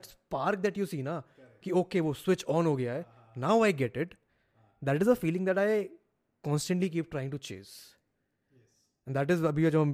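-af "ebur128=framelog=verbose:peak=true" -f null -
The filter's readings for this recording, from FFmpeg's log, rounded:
Integrated loudness:
  I:         -30.2 LUFS
  Threshold: -41.3 LUFS
Loudness range:
  LRA:         5.4 LU
  Threshold: -51.3 LUFS
  LRA low:   -35.4 LUFS
  LRA high:  -30.0 LUFS
True peak:
  Peak:      -11.9 dBFS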